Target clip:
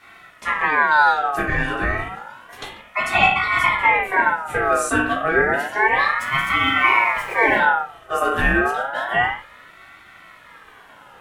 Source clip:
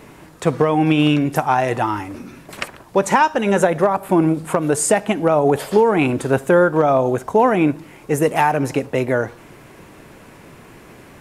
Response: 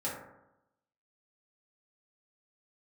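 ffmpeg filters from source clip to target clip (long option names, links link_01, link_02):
-filter_complex "[0:a]asettb=1/sr,asplit=3[link_01][link_02][link_03];[link_01]atrim=end=6.194[link_04];[link_02]atrim=start=6.19:end=7.59,asetpts=PTS-STARTPTS,afade=type=in:duration=0.004:curve=qsin,afade=type=out:start_time=1.396:duration=0.004:curve=qsin,aeval=exprs='val(0)+0.5*0.0447*sgn(val(0))':channel_layout=same[link_05];[link_03]atrim=start=7.586[link_06];[link_04][link_05]acrossfade=duration=0.004:curve1=hsin:curve2=qsin[link_07];[link_07][link_06]acrossfade=duration=0.004:curve1=qsin:curve2=hsin[link_08];[1:a]atrim=start_sample=2205,afade=type=out:start_time=0.26:duration=0.01,atrim=end_sample=11907,asetrate=48510,aresample=44100[link_09];[link_08][link_09]afir=irnorm=-1:irlink=0,aeval=exprs='val(0)*sin(2*PI*1300*n/s+1300*0.3/0.3*sin(2*PI*0.3*n/s))':channel_layout=same,volume=-5dB"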